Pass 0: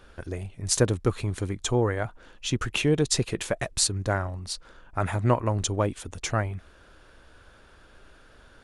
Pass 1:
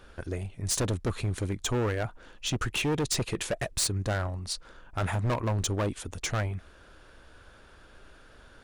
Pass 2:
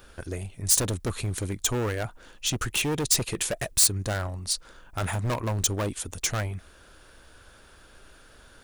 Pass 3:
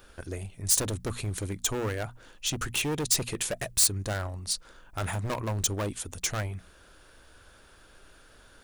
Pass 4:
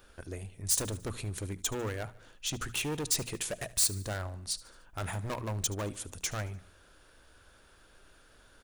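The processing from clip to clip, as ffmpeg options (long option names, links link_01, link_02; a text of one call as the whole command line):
ffmpeg -i in.wav -af "asoftclip=type=hard:threshold=-24dB" out.wav
ffmpeg -i in.wav -af "aemphasis=mode=production:type=50kf" out.wav
ffmpeg -i in.wav -af "bandreject=frequency=60:width_type=h:width=6,bandreject=frequency=120:width_type=h:width=6,bandreject=frequency=180:width_type=h:width=6,bandreject=frequency=240:width_type=h:width=6,volume=-2.5dB" out.wav
ffmpeg -i in.wav -af "aecho=1:1:74|148|222|296:0.106|0.0561|0.0298|0.0158,volume=-4.5dB" out.wav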